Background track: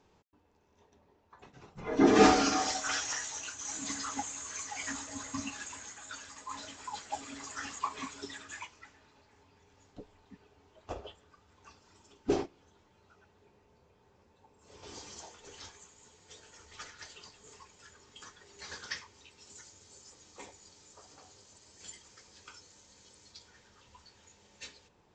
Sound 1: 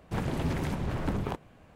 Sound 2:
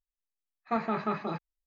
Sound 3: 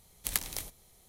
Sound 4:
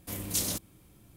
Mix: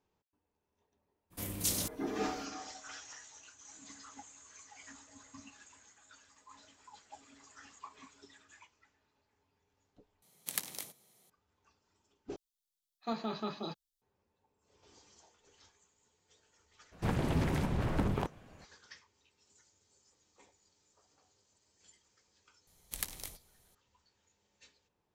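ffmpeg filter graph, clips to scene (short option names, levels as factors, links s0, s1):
-filter_complex "[3:a]asplit=2[s0][s1];[0:a]volume=0.178[s2];[s0]highpass=f=140:w=0.5412,highpass=f=140:w=1.3066[s3];[2:a]firequalizer=gain_entry='entry(160,0);entry(230,4);entry(2100,-6);entry(3300,15)':delay=0.05:min_phase=1[s4];[s2]asplit=3[s5][s6][s7];[s5]atrim=end=10.224[s8];[s3]atrim=end=1.08,asetpts=PTS-STARTPTS,volume=0.562[s9];[s6]atrim=start=11.296:end=12.364[s10];[s4]atrim=end=1.66,asetpts=PTS-STARTPTS,volume=0.355[s11];[s7]atrim=start=14.016[s12];[4:a]atrim=end=1.16,asetpts=PTS-STARTPTS,volume=0.708,afade=t=in:d=0.02,afade=t=out:st=1.14:d=0.02,adelay=1300[s13];[1:a]atrim=end=1.75,asetpts=PTS-STARTPTS,volume=0.891,afade=t=in:d=0.02,afade=t=out:st=1.73:d=0.02,adelay=16910[s14];[s1]atrim=end=1.08,asetpts=PTS-STARTPTS,volume=0.447,afade=t=in:d=0.004:c=hsin,afade=t=out:st=1.076:d=0.004:c=hsin,adelay=22670[s15];[s8][s9]acrossfade=d=0.004:c1=hsin:c2=hsin[s16];[s16][s10]acrossfade=d=0.004:c1=hsin:c2=hsin[s17];[s17][s11]acrossfade=d=0.004:c1=hsin:c2=hsin[s18];[s18][s12]acrossfade=d=0.004:c1=hsin:c2=hsin[s19];[s19][s13][s14][s15]amix=inputs=4:normalize=0"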